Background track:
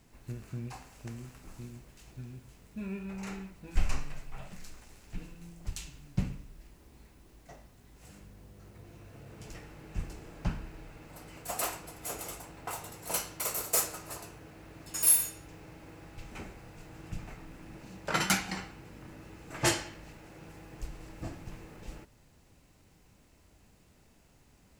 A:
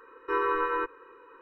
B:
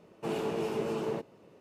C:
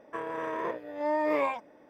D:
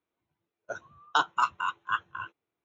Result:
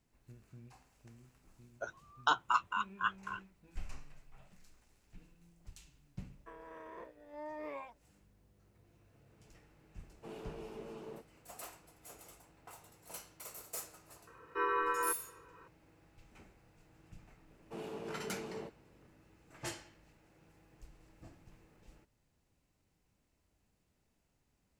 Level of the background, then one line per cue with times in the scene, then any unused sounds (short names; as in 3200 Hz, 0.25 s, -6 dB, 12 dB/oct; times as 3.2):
background track -15.5 dB
1.12 add D -5 dB
6.33 add C -17 dB + expander -50 dBFS
10 add B -15 dB
14.27 add A -4.5 dB + low shelf 380 Hz -8 dB
17.48 add B -11.5 dB